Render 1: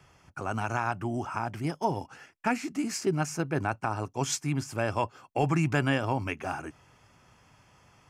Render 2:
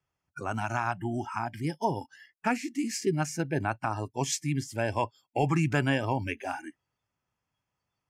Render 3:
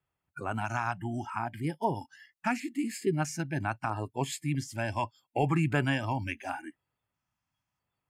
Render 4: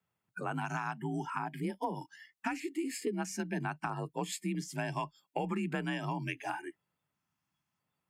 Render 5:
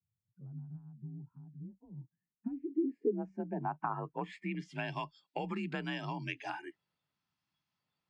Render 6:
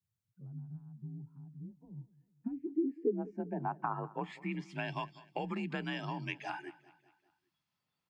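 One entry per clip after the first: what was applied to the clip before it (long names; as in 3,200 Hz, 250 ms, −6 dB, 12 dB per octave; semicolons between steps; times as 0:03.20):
noise reduction from a noise print of the clip's start 25 dB
auto-filter notch square 0.77 Hz 450–5,800 Hz; level −1 dB
downward compressor, threshold −31 dBFS, peak gain reduction 9.5 dB; frequency shifter +40 Hz
low-pass filter sweep 110 Hz → 4,400 Hz, 0:01.88–0:05.07; level −3.5 dB
repeating echo 197 ms, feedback 51%, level −20 dB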